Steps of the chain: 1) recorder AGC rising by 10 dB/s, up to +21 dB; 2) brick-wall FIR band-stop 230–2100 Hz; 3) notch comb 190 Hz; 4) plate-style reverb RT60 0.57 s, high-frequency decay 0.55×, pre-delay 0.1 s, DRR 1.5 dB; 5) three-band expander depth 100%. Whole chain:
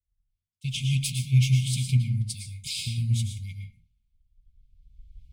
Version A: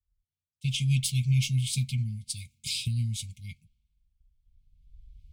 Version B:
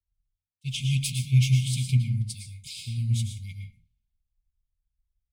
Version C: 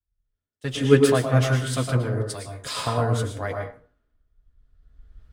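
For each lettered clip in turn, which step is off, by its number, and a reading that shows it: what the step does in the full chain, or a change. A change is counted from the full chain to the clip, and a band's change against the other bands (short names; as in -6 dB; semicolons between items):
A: 4, momentary loudness spread change -3 LU; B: 1, momentary loudness spread change +2 LU; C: 2, 2 kHz band +9.5 dB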